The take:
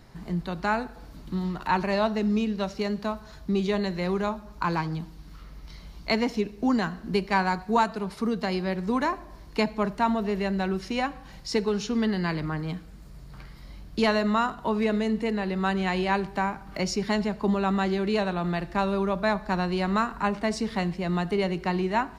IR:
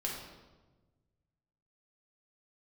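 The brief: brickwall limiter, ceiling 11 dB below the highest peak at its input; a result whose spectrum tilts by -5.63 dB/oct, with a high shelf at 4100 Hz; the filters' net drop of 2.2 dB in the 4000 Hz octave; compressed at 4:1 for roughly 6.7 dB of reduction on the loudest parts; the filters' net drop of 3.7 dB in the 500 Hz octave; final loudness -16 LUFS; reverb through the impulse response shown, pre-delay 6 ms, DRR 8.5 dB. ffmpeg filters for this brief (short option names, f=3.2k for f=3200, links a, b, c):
-filter_complex "[0:a]equalizer=f=500:t=o:g=-5,equalizer=f=4k:t=o:g=-6,highshelf=f=4.1k:g=5.5,acompressor=threshold=-27dB:ratio=4,alimiter=level_in=1.5dB:limit=-24dB:level=0:latency=1,volume=-1.5dB,asplit=2[a][b];[1:a]atrim=start_sample=2205,adelay=6[c];[b][c]afir=irnorm=-1:irlink=0,volume=-11dB[d];[a][d]amix=inputs=2:normalize=0,volume=18dB"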